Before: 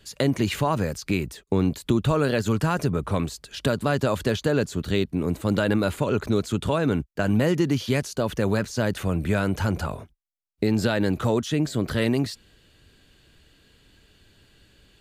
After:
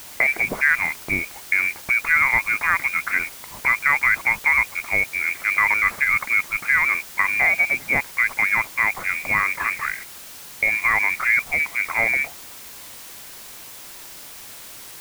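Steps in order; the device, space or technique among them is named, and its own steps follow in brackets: scrambled radio voice (band-pass 360–2800 Hz; frequency inversion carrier 2.6 kHz; white noise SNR 17 dB); trim +7 dB

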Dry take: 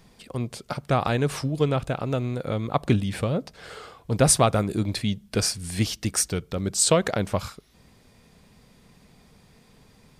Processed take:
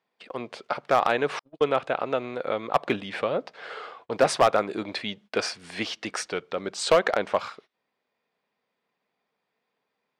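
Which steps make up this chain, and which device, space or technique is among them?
walkie-talkie (band-pass 490–2900 Hz; hard clipper -16 dBFS, distortion -14 dB; gate -54 dBFS, range -22 dB); 1.39–1.80 s: gate -34 dBFS, range -49 dB; trim +5 dB

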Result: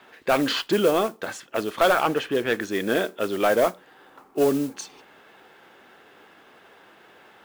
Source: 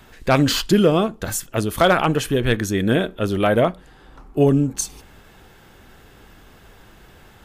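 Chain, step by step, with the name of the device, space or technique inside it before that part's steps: carbon microphone (band-pass 360–3400 Hz; saturation -10.5 dBFS, distortion -15 dB; modulation noise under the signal 19 dB); 2.03–2.61 s: tone controls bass +1 dB, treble -5 dB

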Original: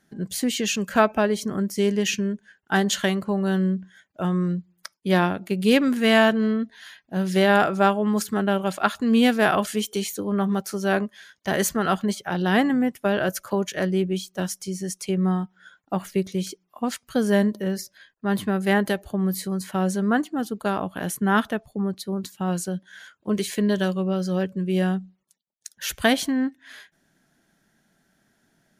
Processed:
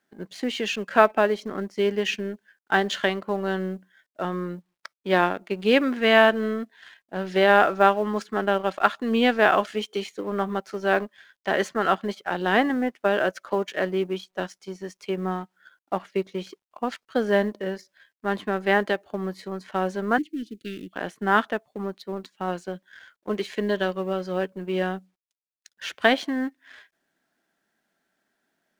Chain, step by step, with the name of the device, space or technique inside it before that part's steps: phone line with mismatched companding (band-pass 330–3200 Hz; companding laws mixed up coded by A); 20.18–20.93 s: elliptic band-stop 340–2300 Hz, stop band 60 dB; trim +2.5 dB

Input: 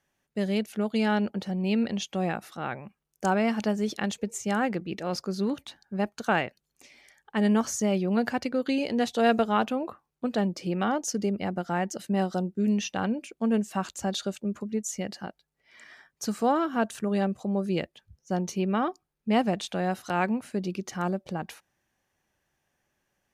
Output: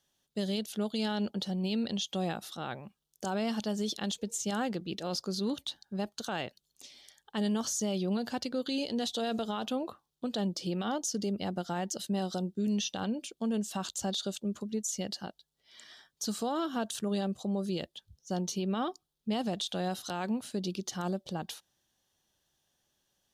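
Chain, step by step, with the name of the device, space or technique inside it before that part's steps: over-bright horn tweeter (resonant high shelf 2.8 kHz +6.5 dB, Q 3; peak limiter -21 dBFS, peak gain reduction 10.5 dB); trim -3.5 dB

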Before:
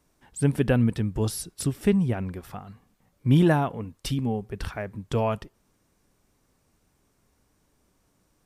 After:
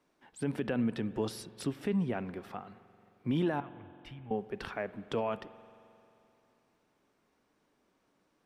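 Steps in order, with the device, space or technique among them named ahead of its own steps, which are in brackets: DJ mixer with the lows and highs turned down (three-band isolator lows -18 dB, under 190 Hz, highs -14 dB, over 4.5 kHz; peak limiter -20.5 dBFS, peak gain reduction 11.5 dB); 3.60–4.31 s: FFT filter 100 Hz 0 dB, 310 Hz -27 dB, 2.2 kHz -6 dB, 4.2 kHz -21 dB; spring tank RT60 2.9 s, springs 44 ms, chirp 65 ms, DRR 16 dB; trim -2 dB

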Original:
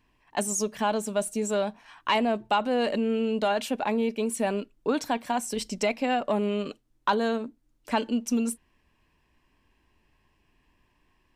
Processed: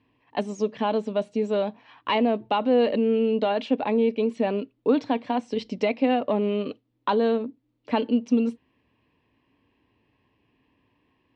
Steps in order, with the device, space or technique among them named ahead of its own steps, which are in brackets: guitar cabinet (cabinet simulation 91–4100 Hz, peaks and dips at 110 Hz +8 dB, 270 Hz +8 dB, 480 Hz +7 dB, 1.5 kHz -6 dB)

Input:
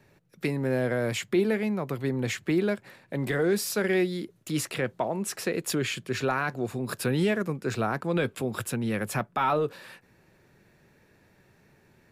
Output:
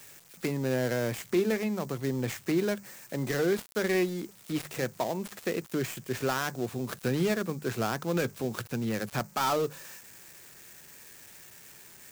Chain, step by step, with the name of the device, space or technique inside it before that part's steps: hum notches 50/100/150/200 Hz; budget class-D amplifier (dead-time distortion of 0.14 ms; zero-crossing glitches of -32 dBFS); trim -2 dB

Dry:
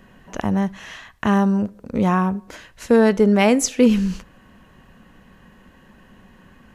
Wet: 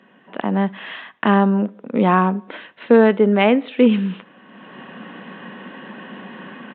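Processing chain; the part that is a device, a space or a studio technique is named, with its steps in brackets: Bluetooth headset (high-pass 200 Hz 24 dB/octave; level rider gain up to 16.5 dB; resampled via 8 kHz; trim -1 dB; SBC 64 kbps 16 kHz)

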